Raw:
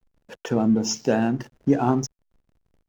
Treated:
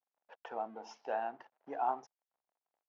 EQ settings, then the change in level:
resonant band-pass 780 Hz, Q 3
high-frequency loss of the air 280 metres
first difference
+15.0 dB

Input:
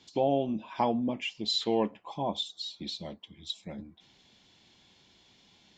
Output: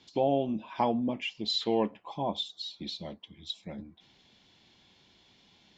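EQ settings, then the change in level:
low-pass filter 5,800 Hz 12 dB per octave
0.0 dB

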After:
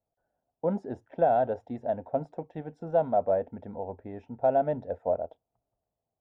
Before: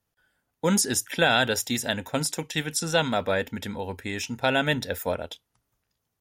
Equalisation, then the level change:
low-pass with resonance 680 Hz, resonance Q 4.9
−8.5 dB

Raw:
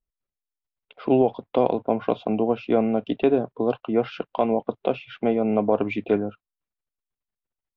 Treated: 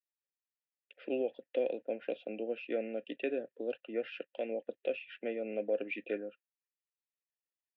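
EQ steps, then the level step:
formant filter e
high-pass filter 250 Hz 12 dB per octave
flat-topped bell 680 Hz −11.5 dB
+5.0 dB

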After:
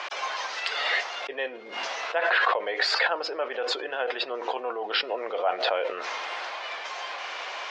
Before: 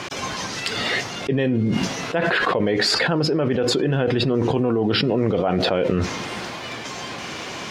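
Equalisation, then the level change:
high-pass filter 600 Hz 24 dB per octave
high-frequency loss of the air 160 metres
0.0 dB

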